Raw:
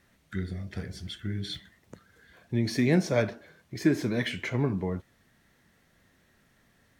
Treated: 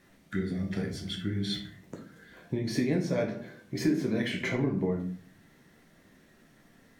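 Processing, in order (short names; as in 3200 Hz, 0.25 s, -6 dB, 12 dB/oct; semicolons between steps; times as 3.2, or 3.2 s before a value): EQ curve 100 Hz 0 dB, 200 Hz +9 dB, 1300 Hz +4 dB; compressor 5:1, threshold -25 dBFS, peak gain reduction 13.5 dB; shoebox room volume 48 m³, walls mixed, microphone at 0.53 m; gain -3 dB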